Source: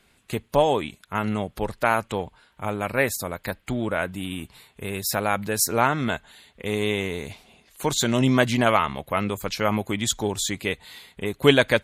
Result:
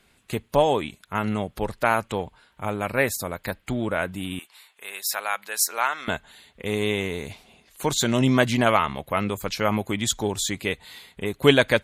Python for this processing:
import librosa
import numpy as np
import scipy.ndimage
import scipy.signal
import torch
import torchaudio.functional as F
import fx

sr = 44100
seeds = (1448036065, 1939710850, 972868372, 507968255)

y = fx.highpass(x, sr, hz=970.0, slope=12, at=(4.39, 6.08))